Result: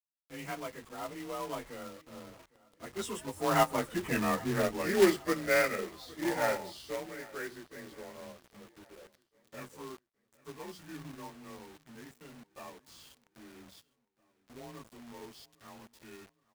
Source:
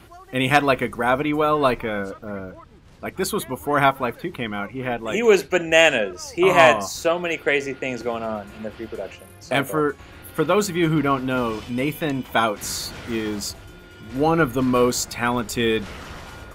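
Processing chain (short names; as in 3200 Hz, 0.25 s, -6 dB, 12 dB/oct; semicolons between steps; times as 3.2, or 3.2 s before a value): inharmonic rescaling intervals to 91%; Doppler pass-by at 4.27, 24 m/s, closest 9.4 m; companded quantiser 4-bit; feedback echo 0.808 s, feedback 50%, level -23 dB; gain -1 dB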